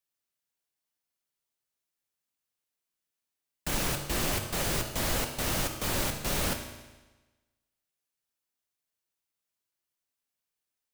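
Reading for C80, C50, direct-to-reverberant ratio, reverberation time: 9.0 dB, 7.0 dB, 4.0 dB, 1.2 s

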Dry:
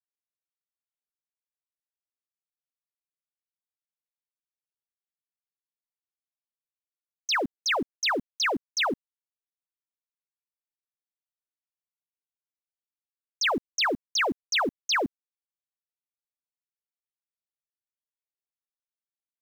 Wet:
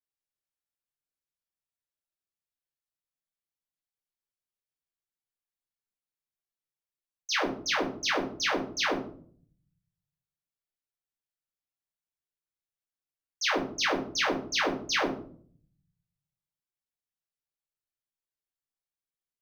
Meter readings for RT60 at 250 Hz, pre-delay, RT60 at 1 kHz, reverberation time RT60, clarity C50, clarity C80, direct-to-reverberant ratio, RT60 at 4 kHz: 1.1 s, 4 ms, 0.45 s, 0.50 s, 7.5 dB, 12.0 dB, −6.0 dB, 0.30 s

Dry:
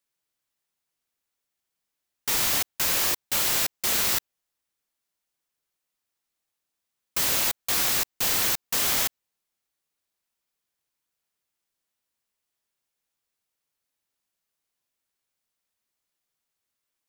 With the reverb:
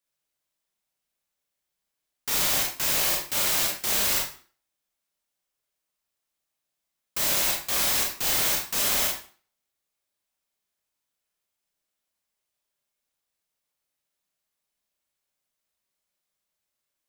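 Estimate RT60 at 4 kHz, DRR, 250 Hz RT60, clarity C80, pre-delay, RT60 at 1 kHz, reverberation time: 0.40 s, −1.0 dB, 0.45 s, 9.5 dB, 26 ms, 0.45 s, 0.45 s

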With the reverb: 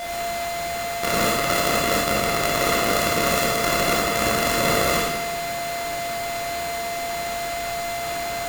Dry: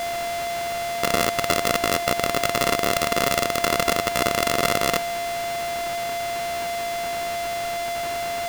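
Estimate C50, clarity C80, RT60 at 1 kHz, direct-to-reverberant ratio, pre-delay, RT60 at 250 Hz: −0.5 dB, 3.5 dB, 1.1 s, −5.5 dB, 18 ms, 1.3 s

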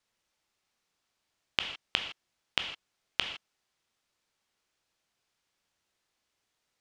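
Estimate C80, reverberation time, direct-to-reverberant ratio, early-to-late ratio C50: 10.0 dB, non-exponential decay, 4.5 dB, 7.5 dB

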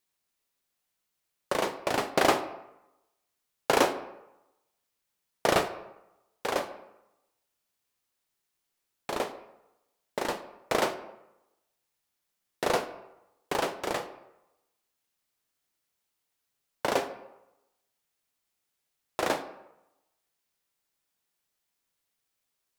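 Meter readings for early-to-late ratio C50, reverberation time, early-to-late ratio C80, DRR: 12.5 dB, 0.90 s, 14.5 dB, 9.0 dB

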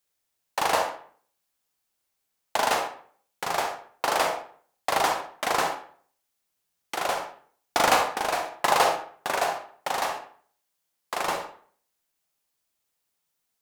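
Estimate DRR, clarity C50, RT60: 4.0 dB, 6.0 dB, 0.50 s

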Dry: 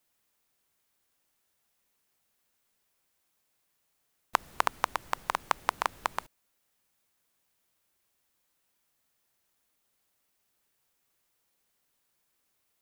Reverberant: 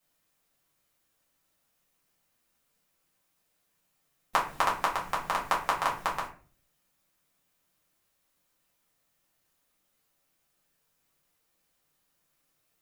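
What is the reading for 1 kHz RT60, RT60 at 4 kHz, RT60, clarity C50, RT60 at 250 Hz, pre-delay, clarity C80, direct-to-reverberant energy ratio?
0.35 s, 0.25 s, 0.40 s, 8.0 dB, 0.65 s, 4 ms, 13.0 dB, −5.5 dB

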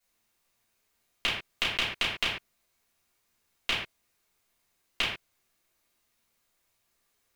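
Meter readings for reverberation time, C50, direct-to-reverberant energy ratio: non-exponential decay, 2.5 dB, −10.0 dB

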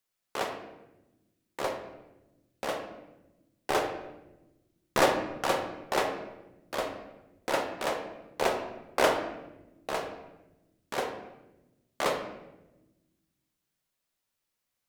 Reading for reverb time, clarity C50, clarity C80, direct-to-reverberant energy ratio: 1.0 s, 7.0 dB, 9.0 dB, 3.0 dB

